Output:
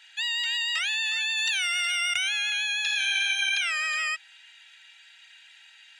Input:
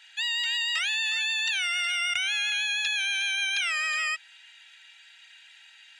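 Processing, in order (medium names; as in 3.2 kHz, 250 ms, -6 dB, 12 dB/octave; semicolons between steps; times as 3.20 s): 1.37–2.29 s: treble shelf 6.7 kHz +7.5 dB; 2.82–3.46 s: reverb throw, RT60 1.5 s, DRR 2 dB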